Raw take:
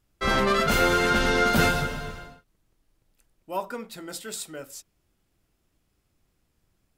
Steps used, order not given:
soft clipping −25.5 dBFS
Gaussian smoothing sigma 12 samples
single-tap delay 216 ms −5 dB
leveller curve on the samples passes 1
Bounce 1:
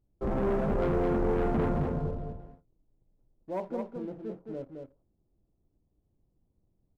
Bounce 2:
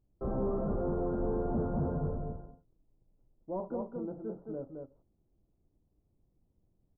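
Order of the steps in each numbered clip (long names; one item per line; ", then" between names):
Gaussian smoothing, then leveller curve on the samples, then soft clipping, then single-tap delay
single-tap delay, then leveller curve on the samples, then soft clipping, then Gaussian smoothing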